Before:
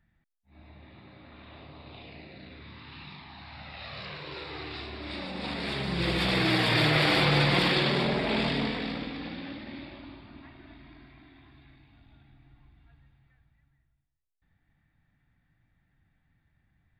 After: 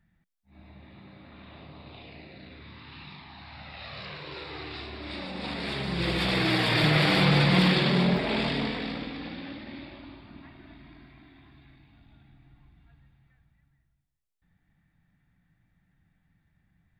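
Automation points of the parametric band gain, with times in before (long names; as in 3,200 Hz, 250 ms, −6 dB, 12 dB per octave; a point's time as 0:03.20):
parametric band 180 Hz 0.35 octaves
+8.5 dB
from 0:01.89 +0.5 dB
from 0:06.84 +11.5 dB
from 0:08.17 −0.5 dB
from 0:10.29 +8.5 dB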